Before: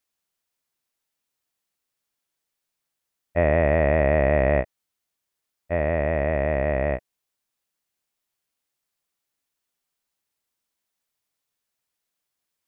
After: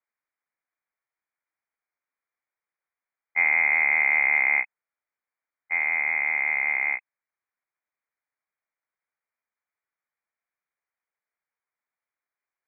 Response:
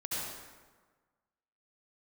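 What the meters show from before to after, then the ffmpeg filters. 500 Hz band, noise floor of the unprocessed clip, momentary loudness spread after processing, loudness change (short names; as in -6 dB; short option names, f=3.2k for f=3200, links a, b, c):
-26.0 dB, -83 dBFS, 9 LU, +1.0 dB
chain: -filter_complex "[0:a]highpass=f=140:w=0.5412,highpass=f=140:w=1.3066,acrossover=split=230 2100:gain=0.1 1 0.158[a][b][c];[a][b][c]amix=inputs=3:normalize=0,lowpass=f=2.3k:t=q:w=0.5098,lowpass=f=2.3k:t=q:w=0.6013,lowpass=f=2.3k:t=q:w=0.9,lowpass=f=2.3k:t=q:w=2.563,afreqshift=-2700"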